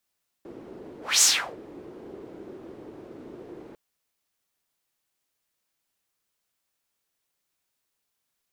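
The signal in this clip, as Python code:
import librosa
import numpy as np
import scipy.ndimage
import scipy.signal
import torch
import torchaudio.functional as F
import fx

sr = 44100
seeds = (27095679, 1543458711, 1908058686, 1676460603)

y = fx.whoosh(sr, seeds[0], length_s=3.3, peak_s=0.77, rise_s=0.23, fall_s=0.37, ends_hz=360.0, peak_hz=7000.0, q=3.3, swell_db=26.0)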